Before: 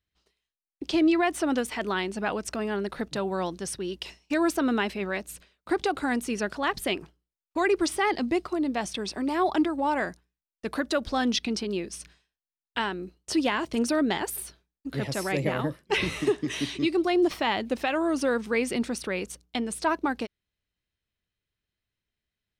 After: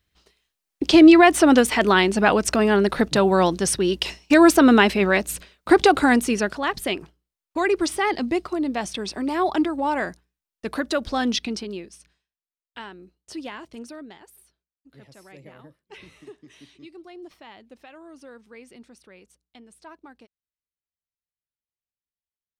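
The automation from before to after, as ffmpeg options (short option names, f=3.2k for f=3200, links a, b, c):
-af "volume=11.5dB,afade=t=out:st=5.96:d=0.65:silence=0.354813,afade=t=out:st=11.33:d=0.65:silence=0.251189,afade=t=out:st=13.52:d=0.65:silence=0.334965"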